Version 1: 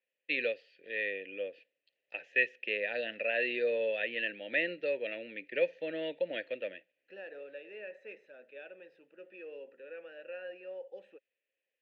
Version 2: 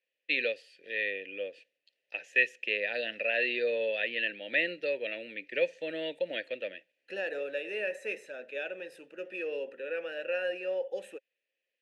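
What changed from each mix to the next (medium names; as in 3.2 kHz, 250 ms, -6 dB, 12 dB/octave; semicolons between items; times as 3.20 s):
second voice +10.0 dB; master: remove distance through air 250 m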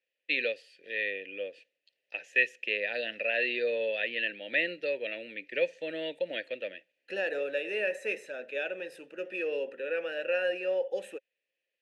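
second voice +3.0 dB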